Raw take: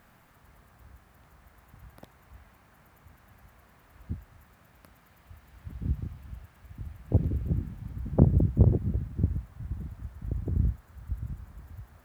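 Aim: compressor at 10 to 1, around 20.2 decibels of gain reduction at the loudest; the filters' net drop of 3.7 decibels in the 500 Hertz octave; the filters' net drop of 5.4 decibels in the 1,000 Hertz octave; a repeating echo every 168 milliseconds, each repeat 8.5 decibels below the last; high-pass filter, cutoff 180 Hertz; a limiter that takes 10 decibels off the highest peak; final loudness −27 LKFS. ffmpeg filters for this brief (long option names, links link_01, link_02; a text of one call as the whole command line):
ffmpeg -i in.wav -af "highpass=180,equalizer=frequency=500:width_type=o:gain=-3.5,equalizer=frequency=1000:width_type=o:gain=-6,acompressor=threshold=-39dB:ratio=10,alimiter=level_in=13.5dB:limit=-24dB:level=0:latency=1,volume=-13.5dB,aecho=1:1:168|336|504|672:0.376|0.143|0.0543|0.0206,volume=25dB" out.wav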